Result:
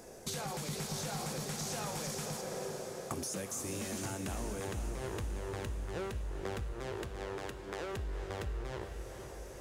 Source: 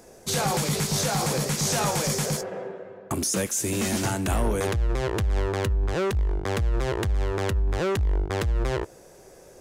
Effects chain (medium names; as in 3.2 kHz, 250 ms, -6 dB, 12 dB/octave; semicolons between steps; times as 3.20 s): 6.72–7.92 s: high-pass 120 Hz -> 390 Hz 12 dB/octave; compression 6:1, threshold -36 dBFS, peak gain reduction 15 dB; echo that smears into a reverb 470 ms, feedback 60%, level -7 dB; trim -2 dB